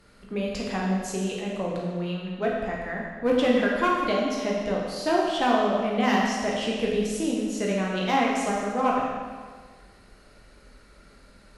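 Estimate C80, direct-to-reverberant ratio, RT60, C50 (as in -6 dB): 2.0 dB, -3.5 dB, 1.6 s, 0.5 dB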